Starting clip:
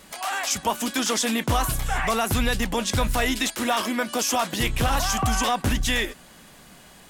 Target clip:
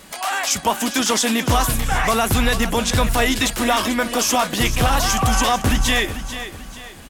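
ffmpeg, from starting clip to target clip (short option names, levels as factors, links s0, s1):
-af "aecho=1:1:441|882|1323|1764:0.266|0.106|0.0426|0.017,volume=1.78"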